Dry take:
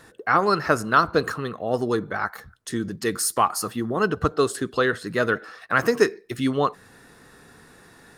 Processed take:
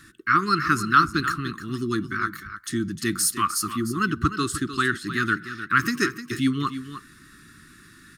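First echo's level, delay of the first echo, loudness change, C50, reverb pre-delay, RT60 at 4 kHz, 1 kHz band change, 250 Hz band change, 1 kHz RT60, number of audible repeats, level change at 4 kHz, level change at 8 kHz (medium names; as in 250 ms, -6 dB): -11.5 dB, 304 ms, -0.5 dB, no reverb, no reverb, no reverb, -0.5 dB, +1.5 dB, no reverb, 1, +2.0 dB, +2.0 dB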